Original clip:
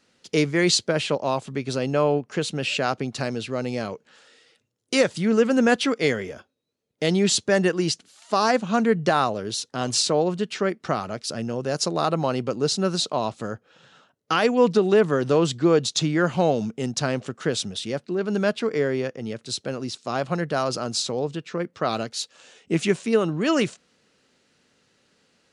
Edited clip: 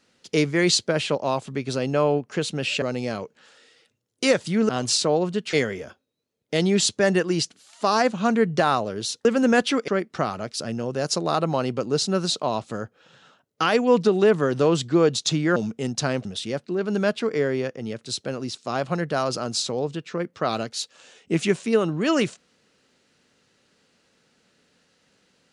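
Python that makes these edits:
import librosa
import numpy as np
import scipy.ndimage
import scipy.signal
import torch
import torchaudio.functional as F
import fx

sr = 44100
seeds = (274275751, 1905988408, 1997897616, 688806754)

y = fx.edit(x, sr, fx.cut(start_s=2.82, length_s=0.7),
    fx.swap(start_s=5.39, length_s=0.63, other_s=9.74, other_length_s=0.84),
    fx.cut(start_s=16.26, length_s=0.29),
    fx.cut(start_s=17.24, length_s=0.41), tone=tone)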